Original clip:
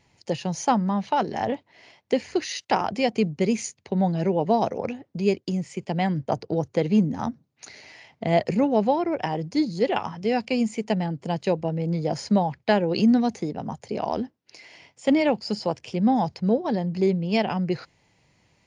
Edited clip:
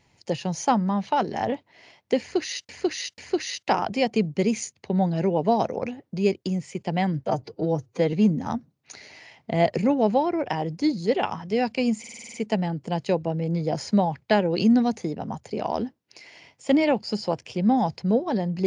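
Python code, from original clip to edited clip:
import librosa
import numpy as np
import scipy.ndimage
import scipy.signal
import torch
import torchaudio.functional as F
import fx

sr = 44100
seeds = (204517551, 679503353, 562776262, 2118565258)

y = fx.edit(x, sr, fx.repeat(start_s=2.2, length_s=0.49, count=3),
    fx.stretch_span(start_s=6.28, length_s=0.58, factor=1.5),
    fx.stutter(start_s=10.72, slice_s=0.05, count=8), tone=tone)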